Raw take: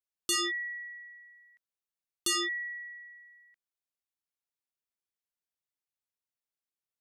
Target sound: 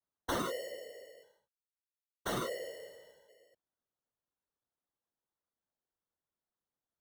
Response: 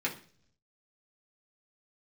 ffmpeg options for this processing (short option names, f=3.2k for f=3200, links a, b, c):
-filter_complex "[0:a]acrusher=samples=18:mix=1:aa=0.000001,asettb=1/sr,asplit=3[a][b][c];[a]atrim=end=1.234[d];[b]atrim=start=1.23:end=3.29,asetpts=PTS-STARTPTS,afade=t=in:d=0.004:c=qsin,afade=t=out:st=2.056:d=0.004:c=qsin,aeval=exprs='sgn(val(0))*max(abs(val(0))-0.00126,0)':c=same[e];[c]atrim=start=3.286[f];[d][e]acrossfade=d=0.004:c1=hsin:c2=qsin[g];[g][f]acrossfade=d=0.004:c1=qsin:c2=hsin,afftfilt=real='hypot(re,im)*cos(2*PI*random(0))':imag='hypot(re,im)*sin(2*PI*random(1))':win_size=512:overlap=0.75,volume=1dB"